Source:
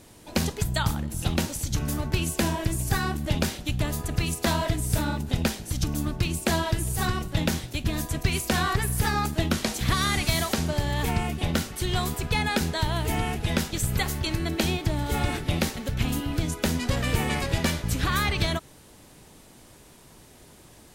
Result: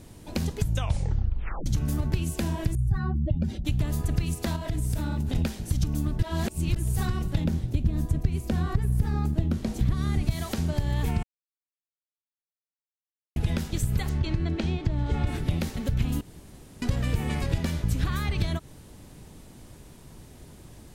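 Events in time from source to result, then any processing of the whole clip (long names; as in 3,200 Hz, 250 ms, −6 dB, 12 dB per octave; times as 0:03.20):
0:00.61: tape stop 1.05 s
0:02.75–0:03.65: expanding power law on the bin magnitudes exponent 2
0:04.56–0:05.35: downward compressor, threshold −28 dBFS
0:06.19–0:06.76: reverse
0:07.44–0:10.31: tilt shelving filter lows +6 dB, about 780 Hz
0:11.23–0:13.36: silence
0:14.09–0:15.27: high-frequency loss of the air 110 metres
0:16.21–0:16.82: fill with room tone
whole clip: downward compressor, threshold −28 dBFS; low-shelf EQ 270 Hz +11.5 dB; level −2.5 dB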